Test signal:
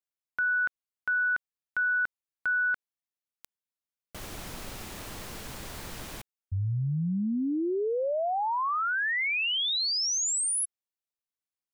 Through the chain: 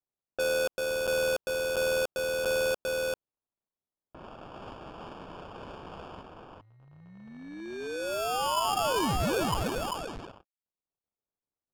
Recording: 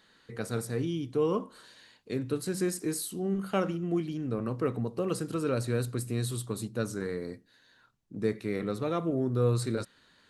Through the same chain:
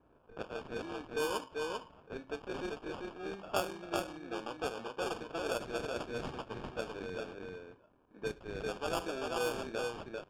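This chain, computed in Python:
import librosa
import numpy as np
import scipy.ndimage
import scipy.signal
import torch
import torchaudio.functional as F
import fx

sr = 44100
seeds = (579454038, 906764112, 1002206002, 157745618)

p1 = fx.dead_time(x, sr, dead_ms=0.099)
p2 = scipy.signal.sosfilt(scipy.signal.butter(2, 660.0, 'highpass', fs=sr, output='sos'), p1)
p3 = p2 + fx.echo_single(p2, sr, ms=394, db=-3.0, dry=0)
p4 = fx.sample_hold(p3, sr, seeds[0], rate_hz=2000.0, jitter_pct=0)
y = fx.env_lowpass(p4, sr, base_hz=1600.0, full_db=-29.0)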